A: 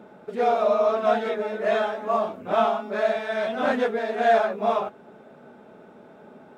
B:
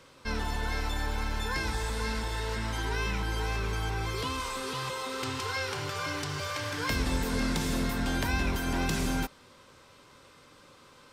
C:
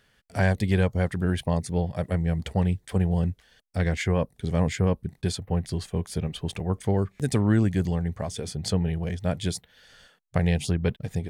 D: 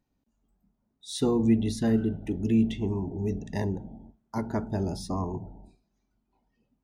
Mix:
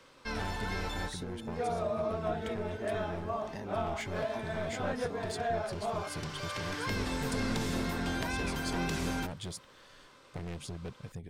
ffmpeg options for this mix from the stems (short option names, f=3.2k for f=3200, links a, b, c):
-filter_complex "[0:a]adelay=1200,volume=-10.5dB[a];[1:a]highshelf=f=8.4k:g=-7,volume=-2dB[b];[2:a]lowshelf=f=110:g=11,dynaudnorm=f=440:g=9:m=11.5dB,asoftclip=type=hard:threshold=-17dB,volume=-10dB[c];[3:a]acompressor=threshold=-29dB:ratio=6,volume=-5dB,asplit=2[d][e];[e]apad=whole_len=490450[f];[b][f]sidechaincompress=threshold=-53dB:ratio=8:attack=42:release=1060[g];[c][d]amix=inputs=2:normalize=0,acompressor=threshold=-35dB:ratio=3,volume=0dB[h];[a][g][h]amix=inputs=3:normalize=0,equalizer=f=62:t=o:w=2.3:g=-9,acrossover=split=490[i][j];[j]acompressor=threshold=-33dB:ratio=6[k];[i][k]amix=inputs=2:normalize=0"